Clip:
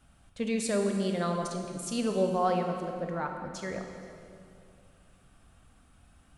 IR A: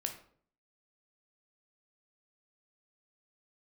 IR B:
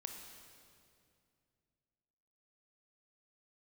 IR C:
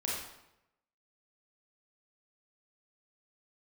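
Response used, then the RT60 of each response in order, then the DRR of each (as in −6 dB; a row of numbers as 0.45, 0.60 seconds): B; 0.55, 2.4, 0.85 seconds; 4.0, 3.5, −5.0 decibels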